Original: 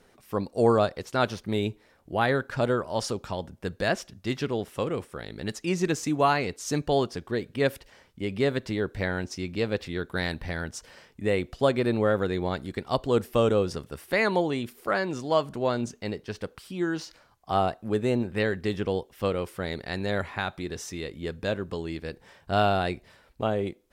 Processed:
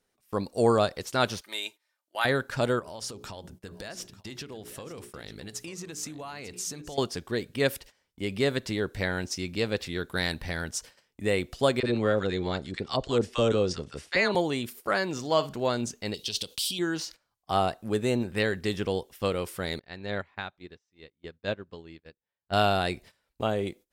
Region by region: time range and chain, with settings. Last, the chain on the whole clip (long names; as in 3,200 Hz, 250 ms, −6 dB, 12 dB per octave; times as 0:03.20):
0:01.41–0:02.25: high-pass filter 970 Hz + comb filter 3.3 ms, depth 44%
0:02.79–0:06.98: mains-hum notches 60/120/180/240/300/360/420 Hz + downward compressor 8 to 1, threshold −36 dBFS + single-tap delay 894 ms −15 dB
0:11.80–0:14.35: low-pass filter 7,200 Hz 24 dB per octave + multiband delay without the direct sound highs, lows 30 ms, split 950 Hz
0:15.10–0:15.60: parametric band 9,600 Hz −8 dB 0.45 octaves + flutter between parallel walls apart 9.8 metres, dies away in 0.22 s
0:16.14–0:16.79: downward compressor 5 to 1, threshold −36 dBFS + high shelf with overshoot 2,400 Hz +12 dB, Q 3
0:19.79–0:22.53: low-pass filter 3,700 Hz + expander for the loud parts 2.5 to 1, over −39 dBFS
whole clip: noise gate −47 dBFS, range −18 dB; high-shelf EQ 3,400 Hz +10 dB; level −1.5 dB